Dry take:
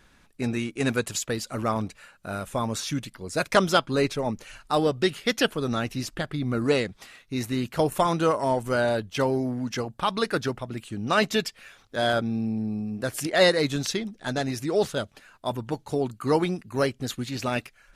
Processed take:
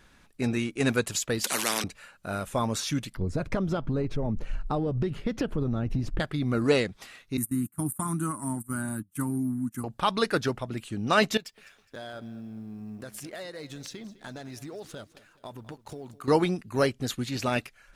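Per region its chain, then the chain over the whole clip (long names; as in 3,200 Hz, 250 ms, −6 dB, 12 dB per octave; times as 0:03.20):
0:01.44–0:01.84: Chebyshev high-pass filter 190 Hz, order 5 + every bin compressed towards the loudest bin 4 to 1
0:03.17–0:06.20: spectral tilt −4.5 dB per octave + downward compressor 16 to 1, threshold −23 dBFS
0:07.37–0:09.84: high-pass filter 110 Hz + noise gate −33 dBFS, range −20 dB + drawn EQ curve 300 Hz 0 dB, 480 Hz −29 dB, 1,200 Hz −6 dB, 3,200 Hz −21 dB, 5,200 Hz −22 dB, 8,800 Hz +13 dB
0:11.37–0:16.28: mu-law and A-law mismatch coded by A + downward compressor 8 to 1, threshold −37 dBFS + repeating echo 207 ms, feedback 39%, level −18 dB
whole clip: no processing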